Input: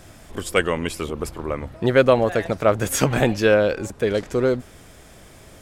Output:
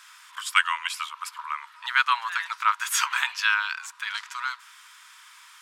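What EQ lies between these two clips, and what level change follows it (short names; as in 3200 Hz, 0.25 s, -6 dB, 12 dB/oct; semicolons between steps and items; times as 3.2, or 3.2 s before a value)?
rippled Chebyshev high-pass 940 Hz, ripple 3 dB; high shelf 5300 Hz -6.5 dB; +5.0 dB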